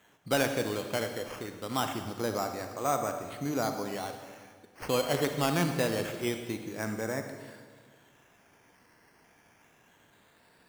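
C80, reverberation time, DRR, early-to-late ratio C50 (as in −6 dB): 8.0 dB, 1.7 s, 6.0 dB, 6.5 dB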